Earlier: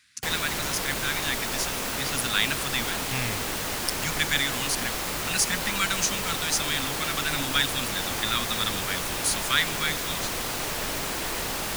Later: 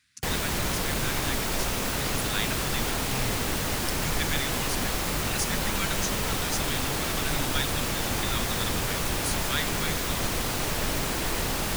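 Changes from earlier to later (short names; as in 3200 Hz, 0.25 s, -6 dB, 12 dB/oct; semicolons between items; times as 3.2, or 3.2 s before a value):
speech -7.5 dB; master: add low shelf 260 Hz +8.5 dB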